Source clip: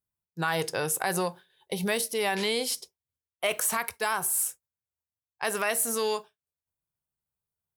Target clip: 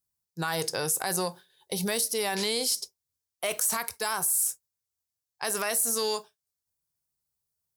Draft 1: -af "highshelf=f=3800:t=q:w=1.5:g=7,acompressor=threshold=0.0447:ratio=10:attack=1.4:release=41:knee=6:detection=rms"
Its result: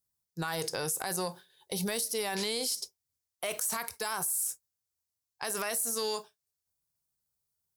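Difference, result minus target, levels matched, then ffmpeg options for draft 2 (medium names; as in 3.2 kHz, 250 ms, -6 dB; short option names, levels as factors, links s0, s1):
compression: peak gain reduction +6 dB
-af "highshelf=f=3800:t=q:w=1.5:g=7,acompressor=threshold=0.0944:ratio=10:attack=1.4:release=41:knee=6:detection=rms"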